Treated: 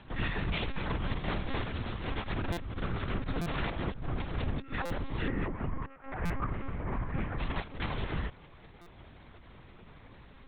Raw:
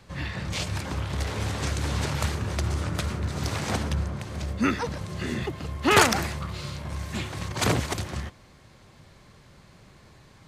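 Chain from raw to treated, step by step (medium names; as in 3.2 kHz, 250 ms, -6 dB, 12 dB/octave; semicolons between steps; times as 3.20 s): 5.27–7.39 s: low-pass 2 kHz 24 dB/octave; compressor with a negative ratio -30 dBFS, ratio -0.5; monotone LPC vocoder at 8 kHz 270 Hz; buffer glitch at 2.52/3.41/4.85/6.25/8.81 s, samples 256, times 8; trim -2.5 dB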